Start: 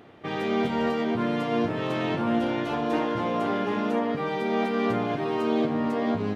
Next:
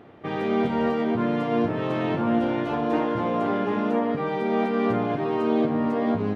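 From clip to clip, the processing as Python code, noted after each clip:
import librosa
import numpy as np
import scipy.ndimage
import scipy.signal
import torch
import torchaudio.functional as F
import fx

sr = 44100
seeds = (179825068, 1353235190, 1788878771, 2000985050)

y = fx.high_shelf(x, sr, hz=2900.0, db=-11.0)
y = y * 10.0 ** (2.5 / 20.0)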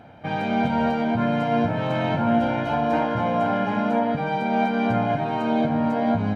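y = x + 0.78 * np.pad(x, (int(1.3 * sr / 1000.0), 0))[:len(x)]
y = y * 10.0 ** (1.5 / 20.0)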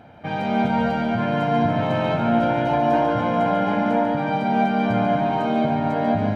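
y = fx.echo_feedback(x, sr, ms=143, feedback_pct=58, wet_db=-6.0)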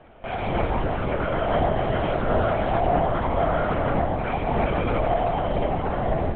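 y = fx.doubler(x, sr, ms=40.0, db=-12.0)
y = fx.lpc_vocoder(y, sr, seeds[0], excitation='whisper', order=8)
y = y * 10.0 ** (-3.0 / 20.0)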